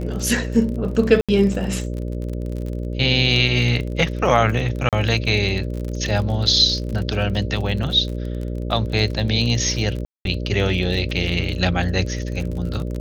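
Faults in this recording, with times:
buzz 60 Hz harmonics 10 -26 dBFS
crackle 35 per s -27 dBFS
1.21–1.29 s: dropout 76 ms
4.89–4.93 s: dropout 37 ms
10.05–10.25 s: dropout 202 ms

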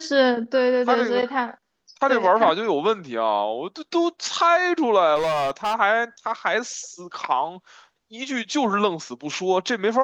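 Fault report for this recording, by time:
5.15–5.75 s: clipped -19.5 dBFS

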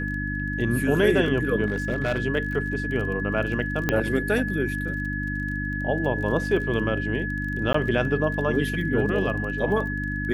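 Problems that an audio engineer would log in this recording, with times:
crackle 23 per s -33 dBFS
hum 50 Hz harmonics 6 -30 dBFS
whine 1.7 kHz -30 dBFS
1.66–2.20 s: clipped -19.5 dBFS
3.89 s: pop -8 dBFS
7.73–7.74 s: dropout 14 ms

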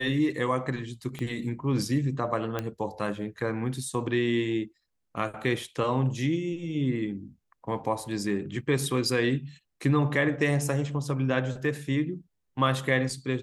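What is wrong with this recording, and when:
1.19 s: pop -22 dBFS
2.59 s: pop -16 dBFS

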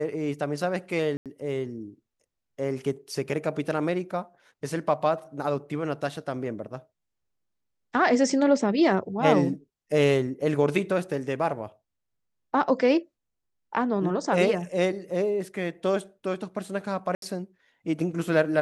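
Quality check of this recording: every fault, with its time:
1.17–1.26 s: dropout 87 ms
17.15–17.22 s: dropout 72 ms

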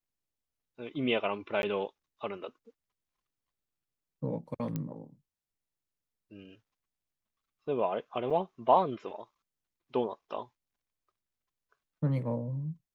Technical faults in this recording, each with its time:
1.62–1.63 s: dropout 11 ms
4.76 s: pop -21 dBFS
8.30–8.31 s: dropout 5.7 ms

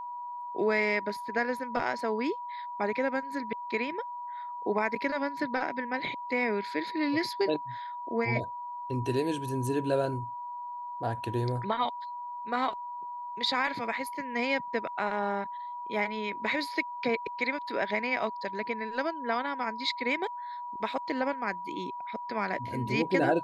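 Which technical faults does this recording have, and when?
whine 970 Hz -36 dBFS

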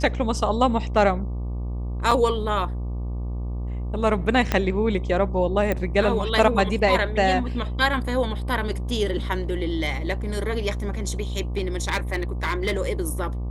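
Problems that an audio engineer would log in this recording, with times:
buzz 60 Hz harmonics 20 -28 dBFS
2.11 s: dropout 4.4 ms
4.52 s: pop -7 dBFS
5.72 s: pop -11 dBFS
11.57–12.80 s: clipped -18.5 dBFS

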